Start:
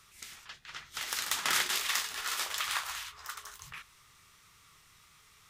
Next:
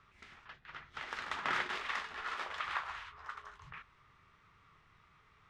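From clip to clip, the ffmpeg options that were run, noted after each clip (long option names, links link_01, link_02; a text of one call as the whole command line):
ffmpeg -i in.wav -af "lowpass=1800" out.wav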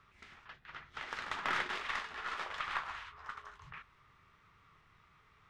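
ffmpeg -i in.wav -af "aeval=exprs='0.119*(cos(1*acos(clip(val(0)/0.119,-1,1)))-cos(1*PI/2))+0.00335*(cos(8*acos(clip(val(0)/0.119,-1,1)))-cos(8*PI/2))':channel_layout=same" out.wav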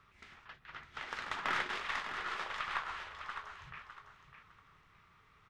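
ffmpeg -i in.wav -af "aecho=1:1:606|1212|1818:0.355|0.0887|0.0222" out.wav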